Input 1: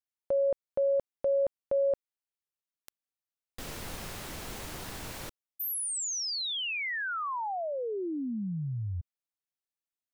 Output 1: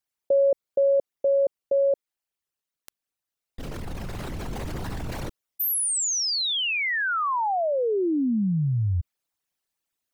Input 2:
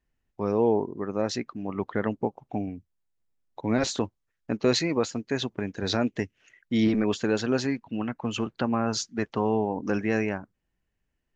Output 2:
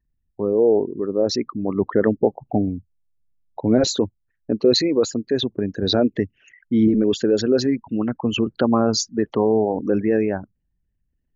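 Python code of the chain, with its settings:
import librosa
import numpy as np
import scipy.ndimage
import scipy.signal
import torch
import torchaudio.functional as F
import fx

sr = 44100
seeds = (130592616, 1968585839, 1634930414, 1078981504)

y = fx.envelope_sharpen(x, sr, power=2.0)
y = fx.rider(y, sr, range_db=3, speed_s=2.0)
y = y * librosa.db_to_amplitude(7.5)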